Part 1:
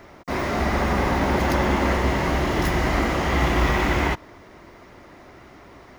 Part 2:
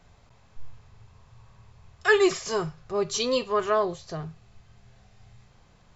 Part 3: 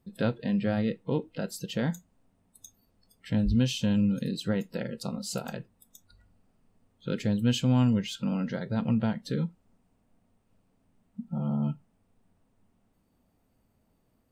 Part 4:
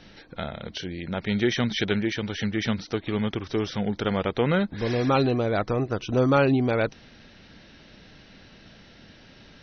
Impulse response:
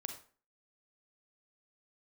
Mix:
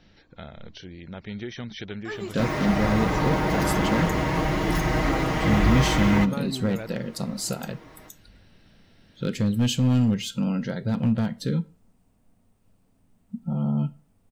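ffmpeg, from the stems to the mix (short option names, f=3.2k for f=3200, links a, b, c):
-filter_complex "[0:a]aecho=1:1:6.4:0.97,adelay=2100,volume=-8dB,asplit=2[a][b];[b]volume=-8.5dB[c];[1:a]volume=-16.5dB[d];[2:a]asoftclip=type=hard:threshold=-19.5dB,highshelf=f=5.3k:g=7,adelay=2150,volume=0.5dB,asplit=2[e][f];[f]volume=-11.5dB[g];[3:a]acompressor=threshold=-25dB:ratio=2,volume=-9.5dB[h];[4:a]atrim=start_sample=2205[i];[c][g]amix=inputs=2:normalize=0[j];[j][i]afir=irnorm=-1:irlink=0[k];[a][d][e][h][k]amix=inputs=5:normalize=0,lowshelf=f=170:g=5"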